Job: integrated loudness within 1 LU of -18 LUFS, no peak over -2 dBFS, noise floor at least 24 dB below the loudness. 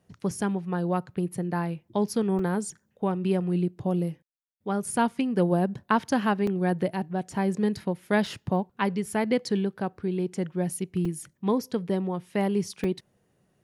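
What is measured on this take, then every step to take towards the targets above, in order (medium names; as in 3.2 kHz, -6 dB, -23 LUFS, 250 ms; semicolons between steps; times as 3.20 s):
dropouts 5; longest dropout 3.3 ms; loudness -28.0 LUFS; peak level -8.5 dBFS; loudness target -18.0 LUFS
-> interpolate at 2.39/6.47/8.26/11.05/12.84 s, 3.3 ms; trim +10 dB; peak limiter -2 dBFS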